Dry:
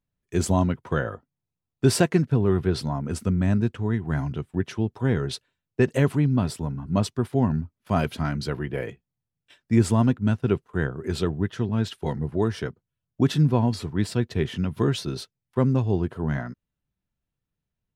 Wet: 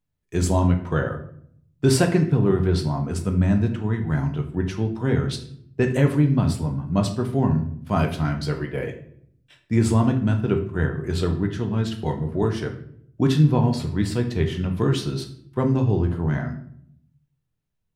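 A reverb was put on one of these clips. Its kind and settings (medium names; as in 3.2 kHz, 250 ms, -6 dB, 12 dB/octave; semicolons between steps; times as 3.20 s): simulated room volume 110 m³, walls mixed, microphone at 0.5 m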